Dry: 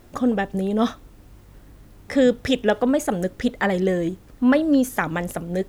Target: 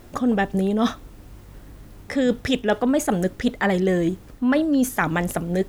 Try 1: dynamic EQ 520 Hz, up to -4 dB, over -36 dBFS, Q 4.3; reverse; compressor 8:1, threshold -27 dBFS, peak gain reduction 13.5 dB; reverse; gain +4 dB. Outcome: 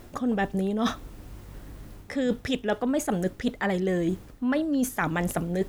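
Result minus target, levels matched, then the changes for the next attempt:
compressor: peak gain reduction +6 dB
change: compressor 8:1, threshold -20 dBFS, peak gain reduction 7.5 dB

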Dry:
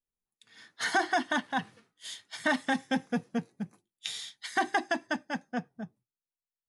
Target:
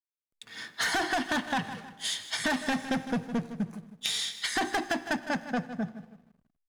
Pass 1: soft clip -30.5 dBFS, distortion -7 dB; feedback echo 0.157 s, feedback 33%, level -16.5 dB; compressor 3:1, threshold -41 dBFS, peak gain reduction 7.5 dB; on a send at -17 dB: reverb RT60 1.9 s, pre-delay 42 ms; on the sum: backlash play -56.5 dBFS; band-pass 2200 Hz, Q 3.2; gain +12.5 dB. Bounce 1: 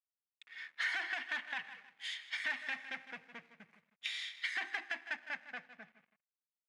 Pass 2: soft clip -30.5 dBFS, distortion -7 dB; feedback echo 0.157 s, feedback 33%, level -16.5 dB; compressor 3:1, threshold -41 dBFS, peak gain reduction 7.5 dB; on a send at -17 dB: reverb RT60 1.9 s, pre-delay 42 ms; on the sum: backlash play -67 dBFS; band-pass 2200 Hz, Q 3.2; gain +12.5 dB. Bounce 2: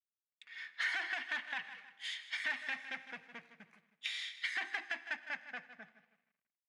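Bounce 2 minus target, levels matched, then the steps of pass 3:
2000 Hz band +3.5 dB
soft clip -30.5 dBFS, distortion -7 dB; feedback echo 0.157 s, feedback 33%, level -16.5 dB; compressor 3:1, threshold -41 dBFS, peak gain reduction 7.5 dB; on a send at -17 dB: reverb RT60 1.9 s, pre-delay 42 ms; on the sum: backlash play -67 dBFS; gain +12.5 dB

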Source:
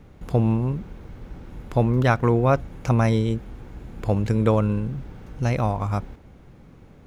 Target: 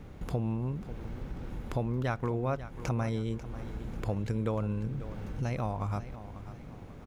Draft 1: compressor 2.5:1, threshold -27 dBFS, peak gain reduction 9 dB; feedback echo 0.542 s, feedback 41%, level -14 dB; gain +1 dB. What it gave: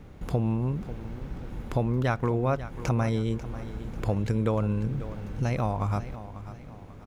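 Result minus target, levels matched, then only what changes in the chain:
compressor: peak gain reduction -5.5 dB
change: compressor 2.5:1, threshold -36 dBFS, peak gain reduction 14.5 dB

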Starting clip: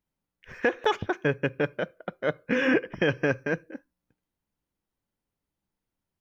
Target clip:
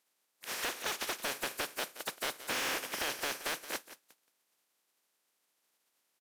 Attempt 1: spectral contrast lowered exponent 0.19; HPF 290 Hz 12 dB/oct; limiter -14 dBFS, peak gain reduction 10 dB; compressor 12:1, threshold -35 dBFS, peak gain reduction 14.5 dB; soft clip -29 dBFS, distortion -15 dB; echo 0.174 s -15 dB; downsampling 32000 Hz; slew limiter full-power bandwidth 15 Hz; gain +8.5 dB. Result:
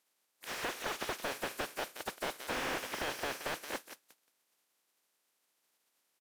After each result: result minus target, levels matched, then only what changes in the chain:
slew limiter: distortion +10 dB; soft clip: distortion -6 dB
change: slew limiter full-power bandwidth 39 Hz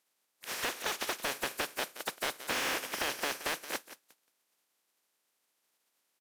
soft clip: distortion -6 dB
change: soft clip -35.5 dBFS, distortion -9 dB

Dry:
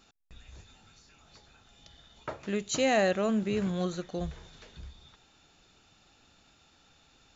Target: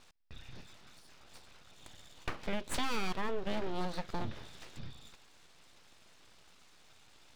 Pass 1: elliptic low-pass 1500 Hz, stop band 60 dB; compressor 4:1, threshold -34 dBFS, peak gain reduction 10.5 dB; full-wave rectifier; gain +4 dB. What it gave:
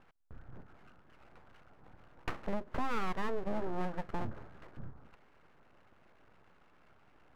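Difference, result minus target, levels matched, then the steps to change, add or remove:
4000 Hz band -10.0 dB
change: elliptic low-pass 5300 Hz, stop band 60 dB

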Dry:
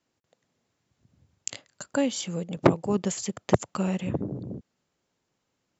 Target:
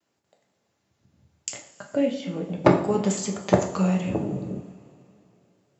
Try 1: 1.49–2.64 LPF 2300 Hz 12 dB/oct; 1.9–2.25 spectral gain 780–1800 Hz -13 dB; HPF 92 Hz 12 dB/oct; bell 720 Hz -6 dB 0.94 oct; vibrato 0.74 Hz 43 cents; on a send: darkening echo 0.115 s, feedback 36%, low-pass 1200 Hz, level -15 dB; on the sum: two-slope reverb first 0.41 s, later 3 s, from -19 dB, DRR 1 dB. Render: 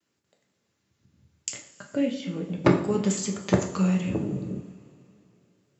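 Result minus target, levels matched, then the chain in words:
1000 Hz band -3.5 dB
1.49–2.64 LPF 2300 Hz 12 dB/oct; 1.9–2.25 spectral gain 780–1800 Hz -13 dB; HPF 92 Hz 12 dB/oct; bell 720 Hz +3 dB 0.94 oct; vibrato 0.74 Hz 43 cents; on a send: darkening echo 0.115 s, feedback 36%, low-pass 1200 Hz, level -15 dB; on the sum: two-slope reverb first 0.41 s, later 3 s, from -19 dB, DRR 1 dB

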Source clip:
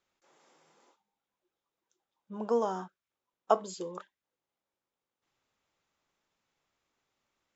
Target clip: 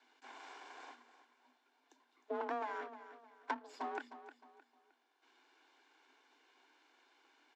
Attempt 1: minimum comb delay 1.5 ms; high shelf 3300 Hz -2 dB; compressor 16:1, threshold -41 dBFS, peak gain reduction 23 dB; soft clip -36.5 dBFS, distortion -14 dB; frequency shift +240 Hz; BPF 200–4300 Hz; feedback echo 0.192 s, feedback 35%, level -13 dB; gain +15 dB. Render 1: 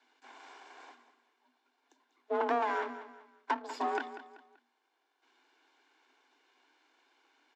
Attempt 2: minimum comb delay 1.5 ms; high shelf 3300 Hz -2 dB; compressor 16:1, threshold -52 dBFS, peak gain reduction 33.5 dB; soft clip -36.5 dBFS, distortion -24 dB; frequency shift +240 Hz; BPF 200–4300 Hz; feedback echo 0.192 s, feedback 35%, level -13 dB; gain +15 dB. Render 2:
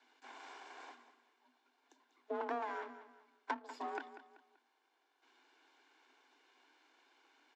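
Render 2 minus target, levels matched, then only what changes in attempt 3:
echo 0.117 s early
change: feedback echo 0.309 s, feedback 35%, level -13 dB

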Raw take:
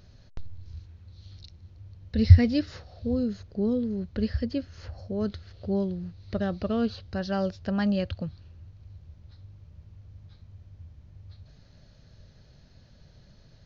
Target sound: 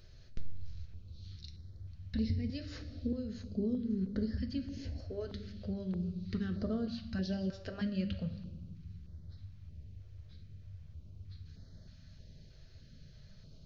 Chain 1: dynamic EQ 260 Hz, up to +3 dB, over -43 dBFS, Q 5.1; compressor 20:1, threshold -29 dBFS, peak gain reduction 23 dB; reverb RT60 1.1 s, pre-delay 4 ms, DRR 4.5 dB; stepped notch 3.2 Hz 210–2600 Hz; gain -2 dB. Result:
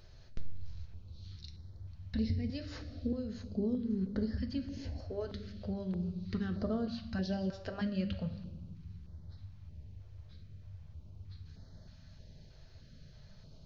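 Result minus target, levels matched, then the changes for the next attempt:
1000 Hz band +5.0 dB
add after compressor: bell 880 Hz -9.5 dB 0.83 oct

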